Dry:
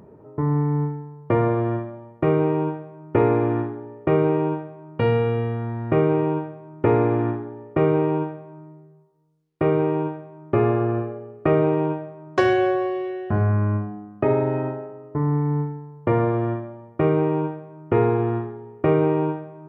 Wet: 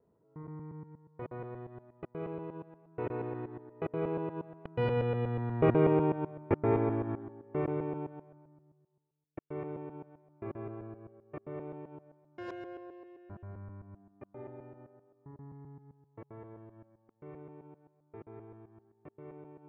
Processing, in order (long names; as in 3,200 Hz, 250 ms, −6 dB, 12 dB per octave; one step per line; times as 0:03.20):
reversed piece by piece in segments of 125 ms
source passing by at 0:05.86, 16 m/s, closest 11 metres
level −5 dB